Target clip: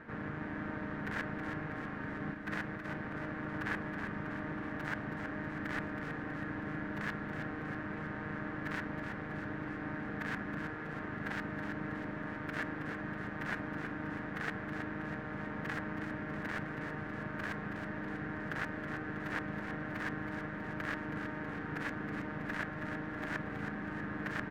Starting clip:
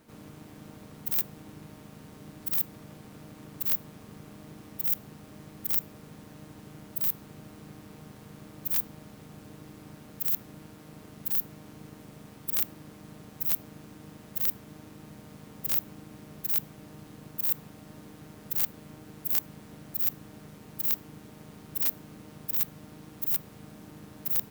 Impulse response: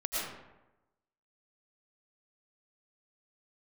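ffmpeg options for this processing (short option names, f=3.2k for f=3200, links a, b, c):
-filter_complex "[0:a]asplit=3[a][b][c];[a]afade=t=out:st=2.33:d=0.02[d];[b]agate=range=-33dB:threshold=-39dB:ratio=3:detection=peak,afade=t=in:st=2.33:d=0.02,afade=t=out:st=2.85:d=0.02[e];[c]afade=t=in:st=2.85:d=0.02[f];[d][e][f]amix=inputs=3:normalize=0,asoftclip=type=hard:threshold=-20.5dB,lowpass=f=1.7k:t=q:w=4.7,aecho=1:1:322|644|966|1288|1610|1932|2254:0.422|0.24|0.137|0.0781|0.0445|0.0254|0.0145,volume=6dB"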